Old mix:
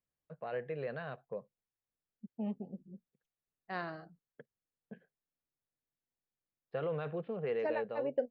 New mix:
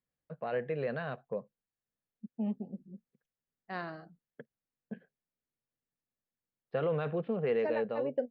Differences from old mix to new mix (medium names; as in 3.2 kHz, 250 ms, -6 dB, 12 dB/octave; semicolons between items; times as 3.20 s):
first voice +4.5 dB; master: add peaking EQ 230 Hz +5 dB 0.5 oct